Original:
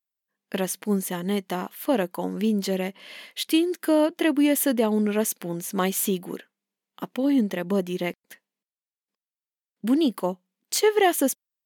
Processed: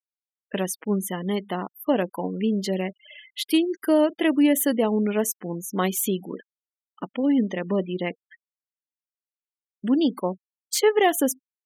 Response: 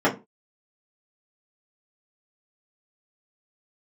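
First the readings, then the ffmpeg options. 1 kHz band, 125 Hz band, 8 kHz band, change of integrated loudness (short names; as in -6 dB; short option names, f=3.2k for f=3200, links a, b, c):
+0.5 dB, 0.0 dB, -0.5 dB, +0.5 dB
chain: -filter_complex "[0:a]asplit=2[a][b];[1:a]atrim=start_sample=2205,lowshelf=f=220:g=-8.5[c];[b][c]afir=irnorm=-1:irlink=0,volume=-36dB[d];[a][d]amix=inputs=2:normalize=0,afftfilt=real='re*gte(hypot(re,im),0.02)':imag='im*gte(hypot(re,im),0.02)':win_size=1024:overlap=0.75"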